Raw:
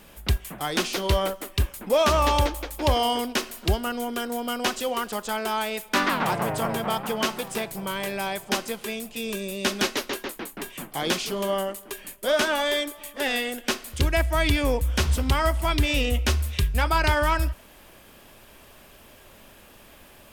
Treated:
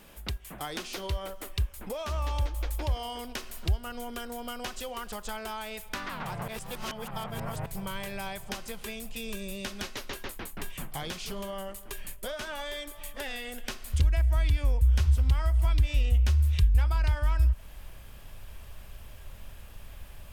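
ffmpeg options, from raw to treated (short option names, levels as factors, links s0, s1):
-filter_complex "[0:a]asplit=3[s0][s1][s2];[s0]atrim=end=6.482[s3];[s1]atrim=start=6.478:end=7.662,asetpts=PTS-STARTPTS,areverse[s4];[s2]atrim=start=7.658[s5];[s3][s4]acrossfade=d=0.004:c1=hsin:c2=hsin[s6];[s6][s5]acrossfade=d=0.004:c1=hsin:c2=hsin,acompressor=threshold=0.0355:ratio=10,asubboost=boost=9:cutoff=92,volume=0.668"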